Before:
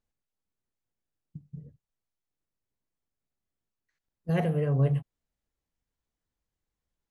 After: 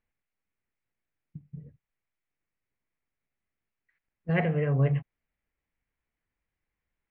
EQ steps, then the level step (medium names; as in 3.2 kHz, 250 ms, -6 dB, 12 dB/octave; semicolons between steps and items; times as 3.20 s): resonant low-pass 2.2 kHz, resonance Q 3; 0.0 dB